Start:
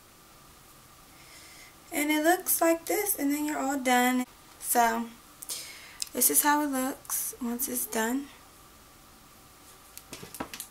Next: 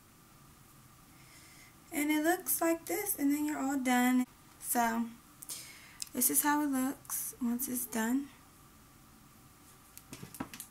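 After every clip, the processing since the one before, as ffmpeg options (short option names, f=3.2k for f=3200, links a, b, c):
-af "equalizer=f=125:t=o:w=1:g=6,equalizer=f=250:t=o:w=1:g=5,equalizer=f=500:t=o:w=1:g=-6,equalizer=f=4k:t=o:w=1:g=-4,volume=-5.5dB"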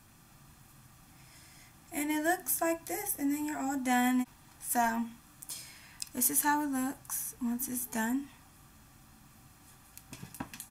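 -af "aecho=1:1:1.2:0.4"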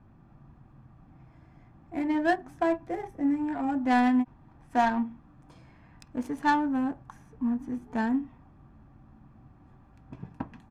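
-af "adynamicsmooth=sensitivity=1.5:basefreq=930,volume=6dB"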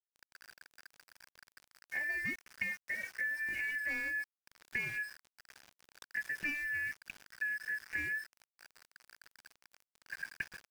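-af "afftfilt=real='real(if(lt(b,272),68*(eq(floor(b/68),0)*1+eq(floor(b/68),1)*0+eq(floor(b/68),2)*3+eq(floor(b/68),3)*2)+mod(b,68),b),0)':imag='imag(if(lt(b,272),68*(eq(floor(b/68),0)*1+eq(floor(b/68),1)*0+eq(floor(b/68),2)*3+eq(floor(b/68),3)*2)+mod(b,68),b),0)':win_size=2048:overlap=0.75,acompressor=threshold=-34dB:ratio=16,aeval=exprs='val(0)*gte(abs(val(0)),0.00473)':c=same"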